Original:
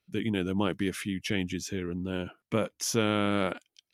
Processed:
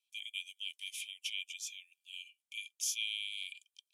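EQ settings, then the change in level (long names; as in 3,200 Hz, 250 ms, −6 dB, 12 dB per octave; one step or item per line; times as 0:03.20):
dynamic equaliser 8,400 Hz, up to −5 dB, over −58 dBFS, Q 3.6
Chebyshev high-pass with heavy ripple 2,300 Hz, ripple 9 dB
+2.5 dB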